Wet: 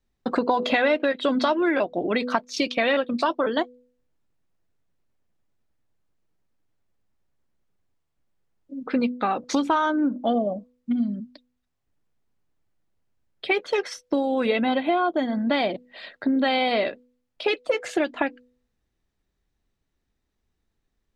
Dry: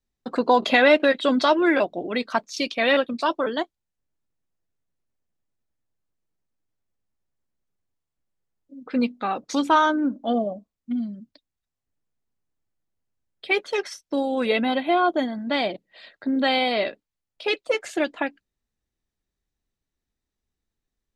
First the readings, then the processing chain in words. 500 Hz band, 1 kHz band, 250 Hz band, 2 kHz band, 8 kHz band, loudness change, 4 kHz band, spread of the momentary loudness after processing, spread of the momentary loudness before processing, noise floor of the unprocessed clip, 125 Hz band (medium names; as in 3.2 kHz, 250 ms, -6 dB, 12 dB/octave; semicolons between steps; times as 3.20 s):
-1.0 dB, -2.0 dB, 0.0 dB, -2.5 dB, -0.5 dB, -1.5 dB, -2.5 dB, 8 LU, 12 LU, -85 dBFS, no reading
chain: treble shelf 5.3 kHz -10 dB; de-hum 247.6 Hz, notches 2; compression 4:1, threshold -28 dBFS, peak gain reduction 13.5 dB; trim +7.5 dB